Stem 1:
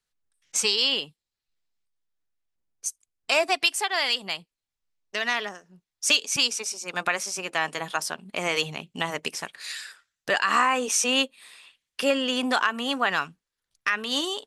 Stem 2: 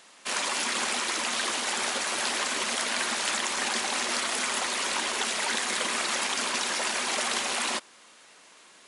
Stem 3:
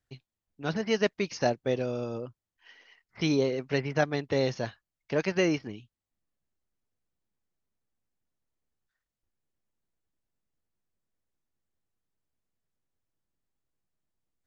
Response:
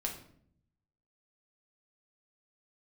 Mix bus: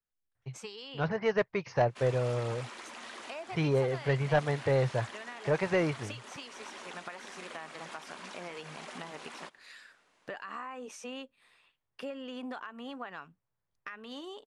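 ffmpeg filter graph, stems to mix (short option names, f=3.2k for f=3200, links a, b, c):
-filter_complex "[0:a]volume=-8dB[a];[1:a]acrusher=bits=8:mode=log:mix=0:aa=0.000001,equalizer=f=6.6k:w=0.31:g=5.5,adelay=1700,volume=-12dB[b];[2:a]equalizer=f=125:t=o:w=1:g=12,equalizer=f=250:t=o:w=1:g=-8,equalizer=f=500:t=o:w=1:g=5,equalizer=f=1k:t=o:w=1:g=9,equalizer=f=2k:t=o:w=1:g=7,adelay=350,volume=-4dB[c];[a][b]amix=inputs=2:normalize=0,highshelf=f=4.3k:g=-7,acompressor=threshold=-36dB:ratio=6,volume=0dB[d];[c][d]amix=inputs=2:normalize=0,highshelf=f=2.5k:g=-11,asoftclip=type=tanh:threshold=-17dB"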